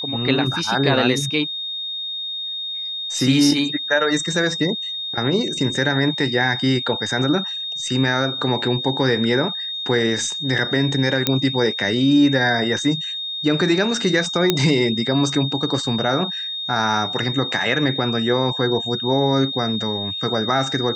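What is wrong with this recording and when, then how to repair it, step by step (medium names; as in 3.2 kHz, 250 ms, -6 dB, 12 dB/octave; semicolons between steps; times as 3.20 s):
whine 3.7 kHz -25 dBFS
11.27 s: pop -1 dBFS
14.50 s: pop -1 dBFS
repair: de-click; band-stop 3.7 kHz, Q 30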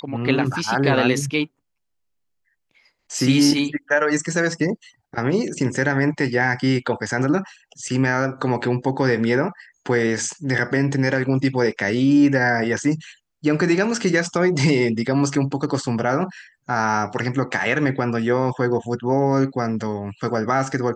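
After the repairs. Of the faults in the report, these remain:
14.50 s: pop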